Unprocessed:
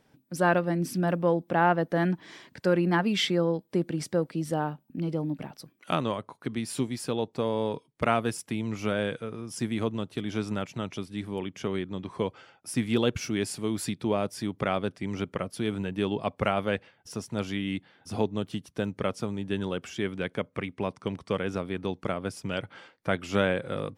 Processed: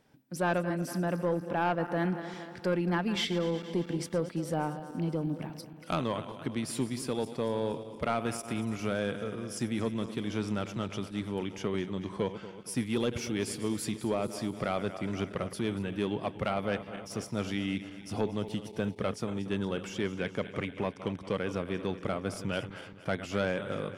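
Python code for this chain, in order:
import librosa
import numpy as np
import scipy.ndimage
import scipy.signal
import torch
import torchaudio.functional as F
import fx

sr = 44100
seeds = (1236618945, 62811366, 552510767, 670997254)

p1 = fx.reverse_delay_fb(x, sr, ms=117, feedback_pct=74, wet_db=-14)
p2 = fx.rider(p1, sr, range_db=4, speed_s=0.5)
p3 = p1 + (p2 * librosa.db_to_amplitude(0.0))
p4 = 10.0 ** (-11.0 / 20.0) * np.tanh(p3 / 10.0 ** (-11.0 / 20.0))
y = p4 * librosa.db_to_amplitude(-8.5)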